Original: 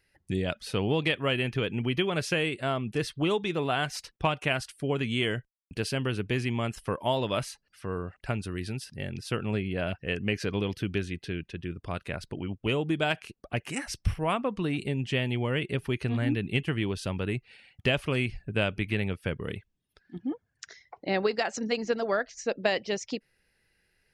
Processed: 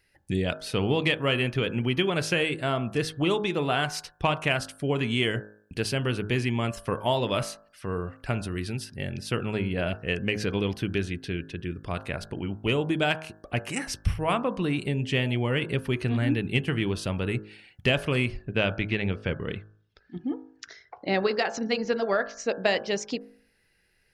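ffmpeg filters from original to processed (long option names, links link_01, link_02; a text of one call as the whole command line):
ffmpeg -i in.wav -filter_complex "[0:a]asettb=1/sr,asplit=3[link_01][link_02][link_03];[link_01]atrim=end=18.374[link_04];[link_02]atrim=start=18.37:end=22.4,asetpts=PTS-STARTPTS,afade=type=in:duration=0.004:curve=qsin,afade=type=out:start_time=4.026:duration=0.004:curve=qsin,lowpass=frequency=6000:width=0.5412,lowpass=frequency=6000:width=1.3066[link_05];[link_03]atrim=start=22.396[link_06];[link_04][link_05]acrossfade=duration=0.004:curve1=hsin:curve2=qsin[link_07];[link_07][link_06]acrossfade=duration=0.004:curve1=qsin:curve2=hsin,bandreject=frequency=52.66:width_type=h:width=4,bandreject=frequency=105.32:width_type=h:width=4,bandreject=frequency=157.98:width_type=h:width=4,bandreject=frequency=210.64:width_type=h:width=4,bandreject=frequency=263.3:width_type=h:width=4,bandreject=frequency=315.96:width_type=h:width=4,bandreject=frequency=368.62:width_type=h:width=4,bandreject=frequency=421.28:width_type=h:width=4,bandreject=frequency=473.94:width_type=h:width=4,bandreject=frequency=526.6:width_type=h:width=4,bandreject=frequency=579.26:width_type=h:width=4,bandreject=frequency=631.92:width_type=h:width=4,bandreject=frequency=684.58:width_type=h:width=4,bandreject=frequency=737.24:width_type=h:width=4,bandreject=frequency=789.9:width_type=h:width=4,bandreject=frequency=842.56:width_type=h:width=4,bandreject=frequency=895.22:width_type=h:width=4,bandreject=frequency=947.88:width_type=h:width=4,bandreject=frequency=1000.54:width_type=h:width=4,bandreject=frequency=1053.2:width_type=h:width=4,bandreject=frequency=1105.86:width_type=h:width=4,bandreject=frequency=1158.52:width_type=h:width=4,bandreject=frequency=1211.18:width_type=h:width=4,bandreject=frequency=1263.84:width_type=h:width=4,bandreject=frequency=1316.5:width_type=h:width=4,bandreject=frequency=1369.16:width_type=h:width=4,bandreject=frequency=1421.82:width_type=h:width=4,bandreject=frequency=1474.48:width_type=h:width=4,bandreject=frequency=1527.14:width_type=h:width=4,bandreject=frequency=1579.8:width_type=h:width=4,bandreject=frequency=1632.46:width_type=h:width=4,bandreject=frequency=1685.12:width_type=h:width=4,bandreject=frequency=1737.78:width_type=h:width=4,acontrast=65,volume=-3.5dB" out.wav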